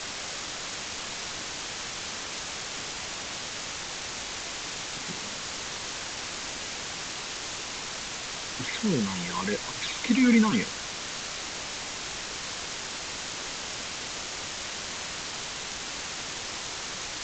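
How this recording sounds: phasing stages 12, 3.7 Hz, lowest notch 490–1100 Hz; a quantiser's noise floor 6-bit, dither triangular; G.722

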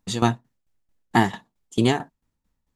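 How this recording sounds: tremolo saw down 4.5 Hz, depth 80%

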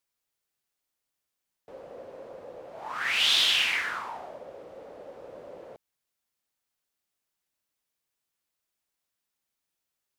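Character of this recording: noise floor -85 dBFS; spectral tilt +1.0 dB/oct

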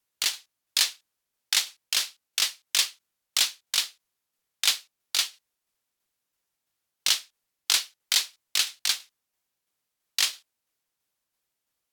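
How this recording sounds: tremolo saw down 3 Hz, depth 35%; Vorbis

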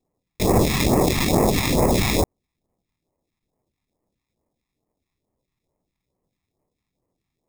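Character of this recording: aliases and images of a low sample rate 1500 Hz, jitter 0%; phasing stages 2, 2.3 Hz, lowest notch 480–3300 Hz

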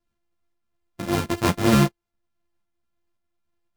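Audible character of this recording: a buzz of ramps at a fixed pitch in blocks of 128 samples; tremolo saw up 1.9 Hz, depth 40%; a shimmering, thickened sound

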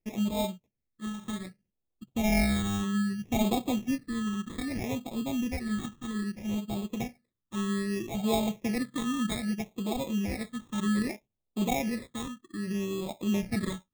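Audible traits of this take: aliases and images of a low sample rate 1500 Hz, jitter 0%; phasing stages 8, 0.63 Hz, lowest notch 660–1800 Hz

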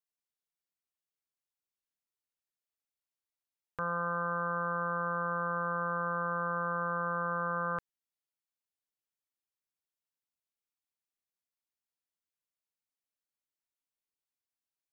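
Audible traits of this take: noise floor -94 dBFS; spectral tilt -0.5 dB/oct

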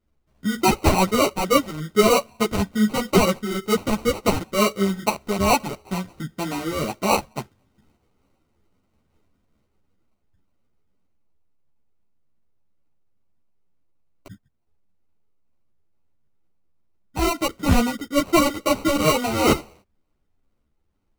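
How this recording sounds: phasing stages 6, 2.2 Hz, lowest notch 600–1500 Hz; aliases and images of a low sample rate 1700 Hz, jitter 0%; a shimmering, thickened sound

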